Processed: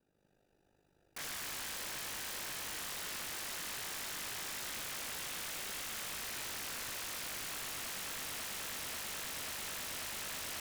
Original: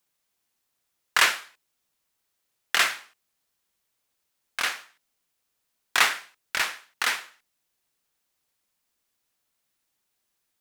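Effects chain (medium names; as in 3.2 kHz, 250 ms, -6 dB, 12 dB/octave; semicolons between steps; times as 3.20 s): local Wiener filter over 41 samples; echo with a slow build-up 108 ms, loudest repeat 8, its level -11 dB; compression, threshold -34 dBFS, peak gain reduction 18 dB; saturation -28.5 dBFS, distortion -17 dB; gated-style reverb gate 270 ms rising, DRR -4.5 dB; peak limiter -33.5 dBFS, peak gain reduction 12 dB; ring modulator 25 Hz; sine folder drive 18 dB, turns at -33.5 dBFS; trim -5 dB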